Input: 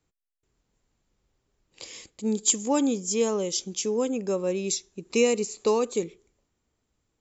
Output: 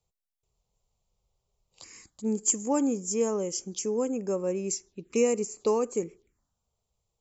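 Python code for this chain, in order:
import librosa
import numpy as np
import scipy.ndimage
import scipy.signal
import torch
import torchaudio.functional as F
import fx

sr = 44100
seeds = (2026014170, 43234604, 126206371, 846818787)

y = fx.env_phaser(x, sr, low_hz=280.0, high_hz=3700.0, full_db=-28.5)
y = y * librosa.db_to_amplitude(-2.0)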